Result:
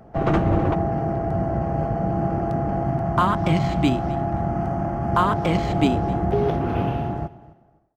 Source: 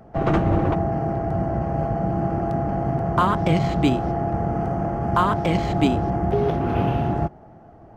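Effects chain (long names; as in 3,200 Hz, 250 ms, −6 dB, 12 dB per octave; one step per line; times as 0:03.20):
fade-out on the ending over 1.41 s
0:02.84–0:05.10: parametric band 460 Hz −14 dB 0.22 octaves
repeating echo 260 ms, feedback 21%, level −19.5 dB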